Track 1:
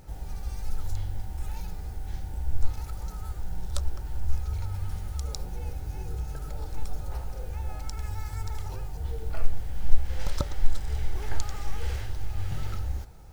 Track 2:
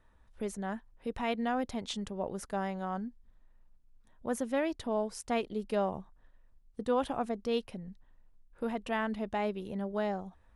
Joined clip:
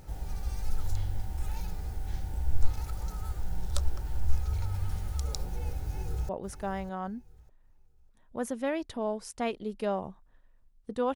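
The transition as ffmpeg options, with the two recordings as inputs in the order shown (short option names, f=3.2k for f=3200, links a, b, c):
-filter_complex "[0:a]apad=whole_dur=11.15,atrim=end=11.15,atrim=end=6.292[a];[1:a]atrim=start=2.188:end=7.05[b];[a][b]acrossfade=d=0.004:c1=hsin:c2=hsin,asplit=2[c][d];[d]afade=t=in:st=5.83:d=0.01,afade=t=out:st=6.29:d=0.01,aecho=0:1:600|1200|1800:0.237137|0.0592843|0.0148211[e];[c][e]amix=inputs=2:normalize=0"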